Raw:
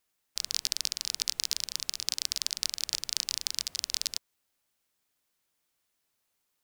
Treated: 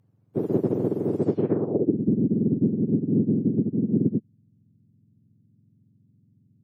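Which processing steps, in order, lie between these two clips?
frequency axis turned over on the octave scale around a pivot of 1,400 Hz
low-pass filter sweep 15,000 Hz → 230 Hz, 0:01.08–0:01.97
level +2 dB

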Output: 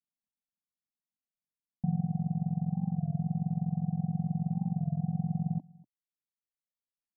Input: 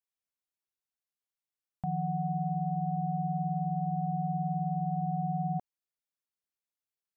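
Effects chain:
octave-band graphic EQ 125/250/500 Hz +11/+8/−9 dB
in parallel at −10 dB: soft clipping −30 dBFS, distortion −8 dB
on the sum: tilt shelving filter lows +8 dB, about 650 Hz
phaser with its sweep stopped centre 390 Hz, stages 6
on a send: single-tap delay 243 ms −15 dB
on the sum: amplitude modulation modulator 45 Hz, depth 40%
reverb reduction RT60 1.1 s
wow of a warped record 33 1/3 rpm, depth 100 cents
level −6.5 dB

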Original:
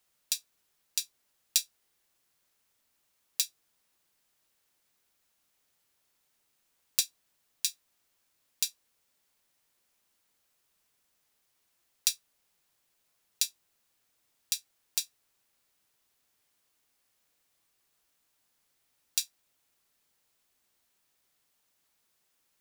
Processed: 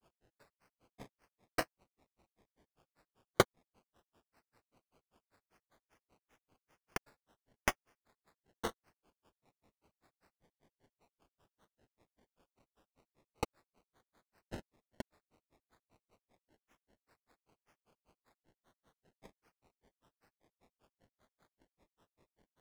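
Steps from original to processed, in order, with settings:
sample-rate reduction 2,200 Hz, jitter 0%
granular cloud 119 ms, grains 5.1 per second, spray 10 ms, pitch spread up and down by 12 semitones
level +5.5 dB

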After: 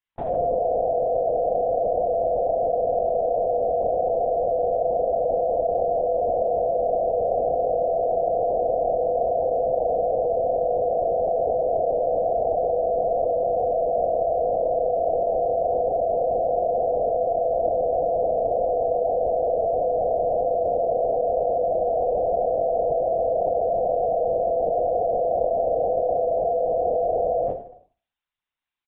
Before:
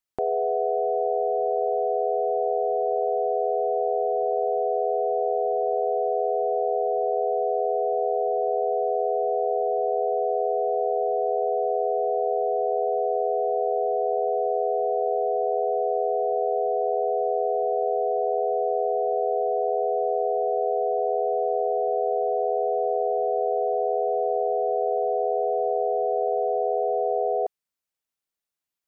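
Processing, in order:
high-pass filter 660 Hz 12 dB per octave
on a send: reverse bouncing-ball delay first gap 20 ms, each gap 1.5×, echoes 5
on the sum: four-comb reverb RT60 0.41 s, combs from 33 ms, DRR 0 dB
linear-prediction vocoder at 8 kHz whisper

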